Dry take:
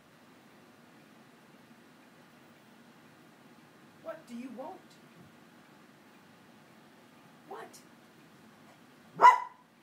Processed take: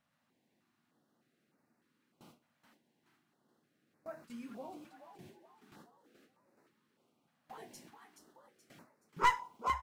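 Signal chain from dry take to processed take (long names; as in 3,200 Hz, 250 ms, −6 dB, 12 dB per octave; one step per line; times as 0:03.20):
stylus tracing distortion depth 0.061 ms
in parallel at +3 dB: downward compressor, threshold −52 dBFS, peak gain reduction 34 dB
on the sum: bit-depth reduction 12 bits, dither none
noise gate with hold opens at −38 dBFS
on a send: echo with shifted repeats 426 ms, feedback 45%, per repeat +63 Hz, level −8 dB
on the sum: notch on a step sequencer 3.3 Hz 380–3,200 Hz
level −6 dB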